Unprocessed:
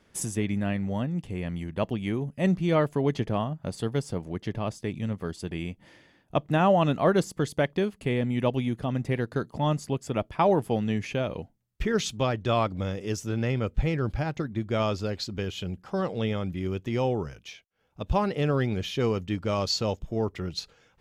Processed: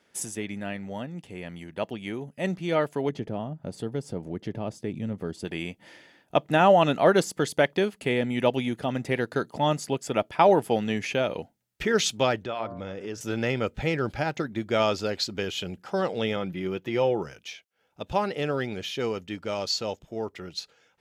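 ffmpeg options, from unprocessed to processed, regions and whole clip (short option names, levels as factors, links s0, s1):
-filter_complex "[0:a]asettb=1/sr,asplit=3[s0][s1][s2];[s0]atrim=end=3.094[s3];[s1]atrim=start=3.09:end=5.45,asetpts=PTS-STARTPTS,afade=t=in:d=0.004:c=qsin,afade=t=out:st=2.356:d=0.004:c=qsin,acompressor=threshold=0.0178:ratio=1.5:attack=3.2:release=140:knee=1:detection=peak,tiltshelf=f=640:g=7[s4];[s2]atrim=start=5.446[s5];[s3][s4]acrossfade=d=0.004:c1=hsin:c2=qsin[s6];[s6][s5]acrossfade=d=0.004:c1=qsin:c2=hsin,asettb=1/sr,asplit=3[s7][s8][s9];[s7]atrim=end=12.444[s10];[s8]atrim=start=12.44:end=13.21,asetpts=PTS-STARTPTS,afade=t=in:d=0.004:c=qsin,afade=t=out:st=0.766:d=0.004:c=qsin,bandreject=f=116.3:t=h:w=4,bandreject=f=232.6:t=h:w=4,bandreject=f=348.9:t=h:w=4,bandreject=f=465.2:t=h:w=4,bandreject=f=581.5:t=h:w=4,bandreject=f=697.8:t=h:w=4,bandreject=f=814.1:t=h:w=4,bandreject=f=930.4:t=h:w=4,bandreject=f=1046.7:t=h:w=4,bandreject=f=1163:t=h:w=4,bandreject=f=1279.3:t=h:w=4,bandreject=f=1395.6:t=h:w=4,bandreject=f=1511.9:t=h:w=4,bandreject=f=1628.2:t=h:w=4,bandreject=f=1744.5:t=h:w=4,acompressor=threshold=0.0224:ratio=2.5:attack=3.2:release=140:knee=1:detection=peak,lowpass=f=2100:p=1[s11];[s9]atrim=start=13.206[s12];[s10][s11]acrossfade=d=0.004:c1=hsin:c2=qsin[s13];[s13][s12]acrossfade=d=0.004:c1=qsin:c2=hsin,asettb=1/sr,asplit=3[s14][s15][s16];[s14]atrim=end=16.364[s17];[s15]atrim=start=16.36:end=17.22,asetpts=PTS-STARTPTS,afade=t=in:d=0.004:c=qsin,afade=t=out:st=0.856:d=0.004:c=qsin,equalizer=f=7500:w=0.93:g=-9.5,aecho=1:1:5.9:0.39,atrim=end_sample=37926[s18];[s16]atrim=start=17.216[s19];[s17][s18]acrossfade=d=0.004:c1=hsin:c2=qsin[s20];[s20][s19]acrossfade=d=0.004:c1=qsin:c2=hsin,highpass=f=420:p=1,bandreject=f=1100:w=8.2,dynaudnorm=f=450:g=17:m=2"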